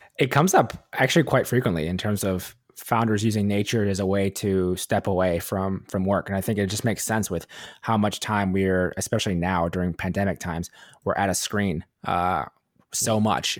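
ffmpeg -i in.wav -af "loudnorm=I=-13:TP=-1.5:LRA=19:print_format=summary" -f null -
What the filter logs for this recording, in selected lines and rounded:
Input Integrated:    -24.3 LUFS
Input True Peak:      -4.7 dBTP
Input LRA:             2.6 LU
Input Threshold:     -34.5 LUFS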